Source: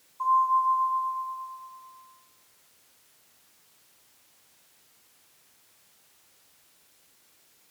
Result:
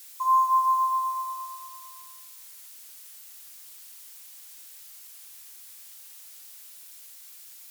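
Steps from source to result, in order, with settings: tilt EQ +4 dB/octave; trim +1.5 dB

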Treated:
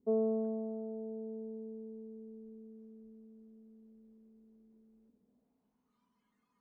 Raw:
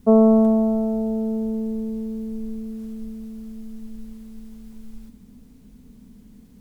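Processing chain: band-pass sweep 390 Hz -> 1.1 kHz, 4.95–5.93 s; spectral noise reduction 15 dB; trim +3.5 dB

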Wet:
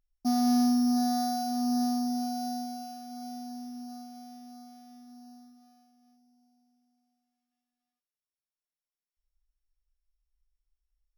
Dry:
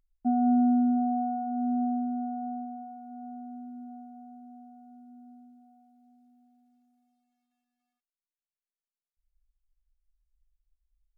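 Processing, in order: sorted samples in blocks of 8 samples; waveshaping leveller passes 1; trim -2.5 dB

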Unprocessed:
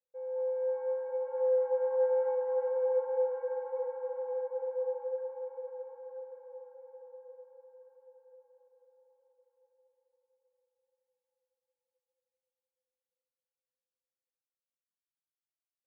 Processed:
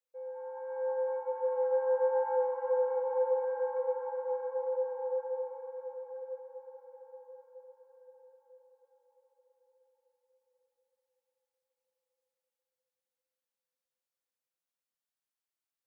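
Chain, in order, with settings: high-pass 360 Hz 6 dB/octave; on a send at -2.5 dB: dynamic bell 1 kHz, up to +6 dB, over -50 dBFS, Q 1.5 + reverberation RT60 1.7 s, pre-delay 58 ms

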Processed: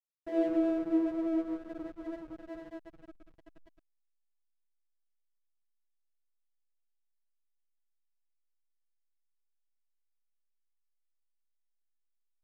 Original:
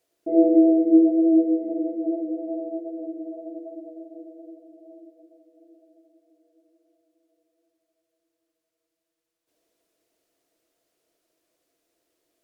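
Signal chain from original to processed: resonant low shelf 680 Hz -9 dB, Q 3; hysteresis with a dead band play -34 dBFS; trim -1.5 dB

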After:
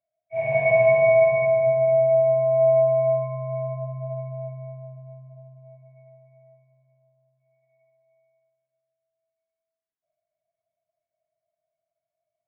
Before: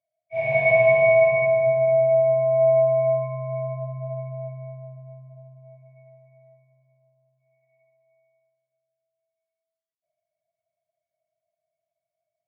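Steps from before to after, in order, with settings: low-pass 2 kHz 12 dB/octave

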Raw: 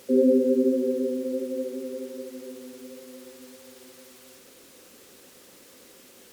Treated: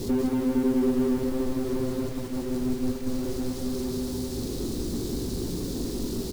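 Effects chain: jump at every zero crossing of -26 dBFS; elliptic band-stop 390–4100 Hz, stop band 40 dB; RIAA curve playback; 2.09–3.07 s: gate -26 dBFS, range -13 dB; compression 6:1, threshold -19 dBFS, peak gain reduction 9 dB; power-law waveshaper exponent 0.7; bit crusher 7-bit; doubling 17 ms -10.5 dB; delay 188 ms -5 dB; trim -4.5 dB

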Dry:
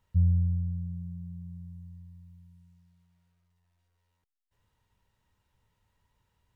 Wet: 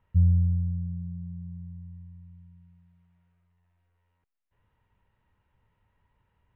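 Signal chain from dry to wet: low-pass 2.7 kHz 24 dB/octave; trim +3 dB

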